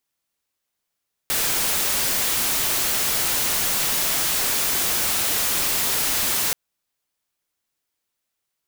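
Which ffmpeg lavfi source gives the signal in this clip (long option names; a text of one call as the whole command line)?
ffmpeg -f lavfi -i "anoisesrc=color=white:amplitude=0.138:duration=5.23:sample_rate=44100:seed=1" out.wav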